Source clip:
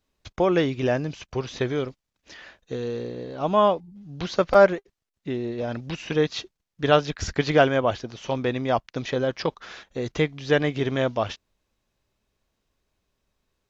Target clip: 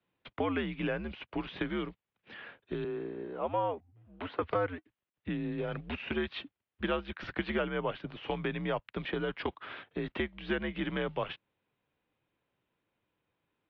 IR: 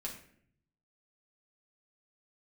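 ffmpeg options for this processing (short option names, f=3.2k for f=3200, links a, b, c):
-filter_complex "[0:a]asettb=1/sr,asplit=3[a][b][c];[a]atrim=end=2.844[d];[b]atrim=start=2.84:end=4.42,asetpts=PTS-STARTPTS,afade=t=in:d=0.004:c=qsin,afade=t=out:st=1.576:d=0.004:c=qsin,acrossover=split=350 2400:gain=0.158 1 0.224[e][f][g];[e][f][g]amix=inputs=3:normalize=0[h];[c]atrim=start=4.416[i];[d][h]acrossfade=d=0.004:c1=hsin:c2=qsin[j];[j][i]acrossfade=d=0.004:c1=qsin:c2=hsin,highpass=f=170:t=q:w=0.5412,highpass=f=170:t=q:w=1.307,lowpass=f=3.4k:t=q:w=0.5176,lowpass=f=3.4k:t=q:w=0.7071,lowpass=f=3.4k:t=q:w=1.932,afreqshift=-88,acrossover=split=180|980[k][l][m];[k]acompressor=threshold=-41dB:ratio=4[n];[l]acompressor=threshold=-32dB:ratio=4[o];[m]acompressor=threshold=-34dB:ratio=4[p];[n][o][p]amix=inputs=3:normalize=0,volume=-2dB"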